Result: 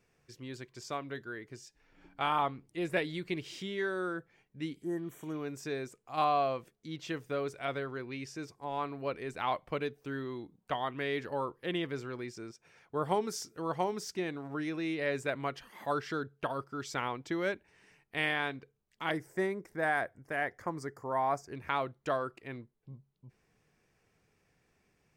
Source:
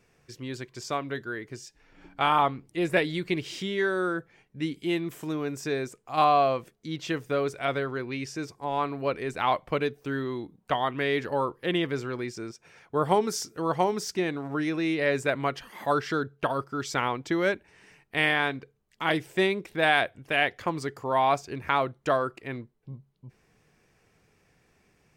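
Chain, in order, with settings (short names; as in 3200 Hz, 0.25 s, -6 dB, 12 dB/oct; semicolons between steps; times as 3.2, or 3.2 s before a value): 4.82–5.36 spectral repair 2000–5500 Hz both; 19.11–21.53 band shelf 3200 Hz -15 dB 1 oct; gain -7.5 dB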